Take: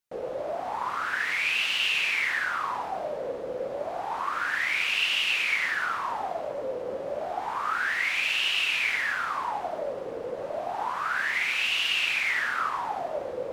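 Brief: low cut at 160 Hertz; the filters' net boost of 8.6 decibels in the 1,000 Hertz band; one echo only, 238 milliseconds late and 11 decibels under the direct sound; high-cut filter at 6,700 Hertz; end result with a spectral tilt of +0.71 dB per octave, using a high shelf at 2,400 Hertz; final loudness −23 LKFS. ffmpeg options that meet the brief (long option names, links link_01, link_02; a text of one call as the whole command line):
ffmpeg -i in.wav -af "highpass=160,lowpass=6700,equalizer=frequency=1000:width_type=o:gain=9,highshelf=frequency=2400:gain=9,aecho=1:1:238:0.282,volume=-2.5dB" out.wav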